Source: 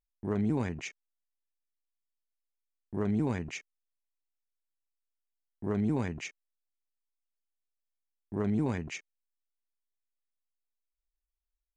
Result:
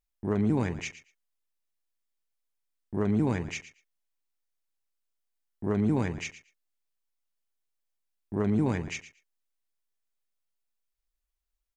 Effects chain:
repeating echo 115 ms, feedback 16%, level −14.5 dB
level +3.5 dB

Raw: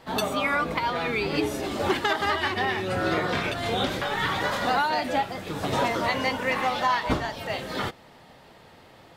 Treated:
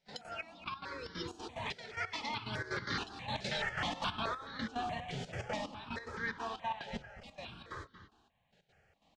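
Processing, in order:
source passing by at 0:03.68, 44 m/s, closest 9.8 metres
low-pass filter 7,100 Hz 24 dB per octave
parametric band 480 Hz −6 dB 1.8 octaves
hum removal 52 Hz, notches 27
reversed playback
downward compressor 6 to 1, threshold −44 dBFS, peak gain reduction 18 dB
reversed playback
gate pattern ".x.xx...x.xxx.xx" 183 BPM −12 dB
slap from a distant wall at 40 metres, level −12 dB
step-sequenced phaser 4.7 Hz 300–2,600 Hz
level +14 dB

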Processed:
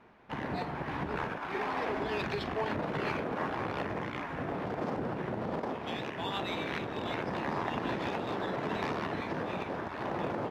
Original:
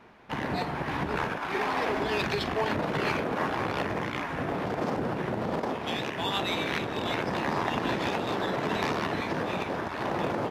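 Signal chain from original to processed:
high-shelf EQ 4,200 Hz −9 dB
level −4.5 dB

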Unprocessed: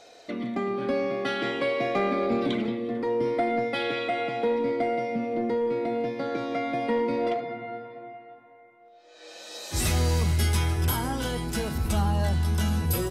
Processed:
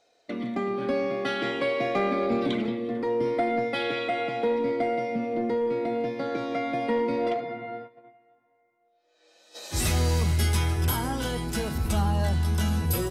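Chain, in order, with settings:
noise gate −39 dBFS, range −15 dB

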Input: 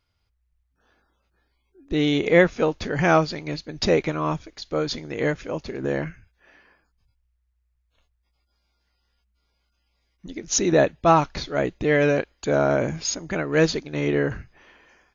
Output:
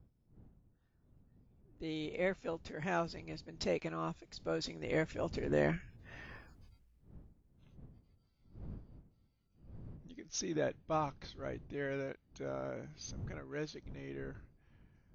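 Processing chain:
source passing by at 0:06.51, 19 m/s, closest 4.6 metres
wind on the microphone 140 Hz −61 dBFS
level +6.5 dB

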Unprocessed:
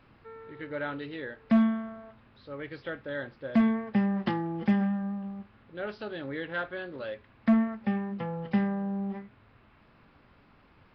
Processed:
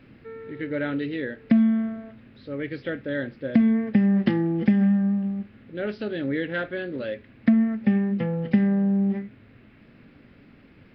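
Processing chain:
octave-band graphic EQ 125/250/500/1,000/2,000 Hz +4/+9/+4/−10/+6 dB
downward compressor 10 to 1, threshold −18 dBFS, peak gain reduction 9.5 dB
level +3 dB

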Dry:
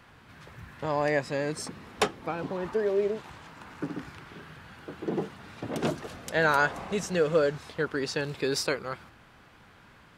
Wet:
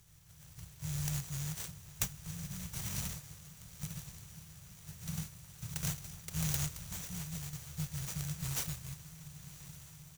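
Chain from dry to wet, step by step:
compressing power law on the bin magnitudes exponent 0.47
linear-phase brick-wall band-stop 180–5,600 Hz
parametric band 450 Hz +14.5 dB 1.3 octaves
comb filter 1.2 ms, depth 74%
feedback delay with all-pass diffusion 1,093 ms, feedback 60%, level −15 dB
0:06.83–0:07.53: downward compressor 6 to 1, threshold −35 dBFS, peak gain reduction 9.5 dB
converter with an unsteady clock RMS 0.025 ms
level −3.5 dB

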